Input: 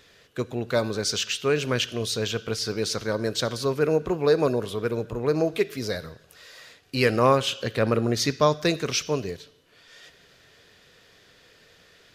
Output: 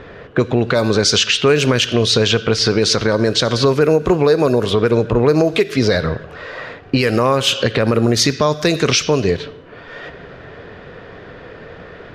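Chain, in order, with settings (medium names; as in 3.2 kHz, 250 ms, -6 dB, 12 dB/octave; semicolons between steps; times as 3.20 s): level-controlled noise filter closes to 1.2 kHz, open at -19 dBFS; compression 6:1, threshold -34 dBFS, peak gain reduction 19 dB; loudness maximiser +27 dB; trim -3 dB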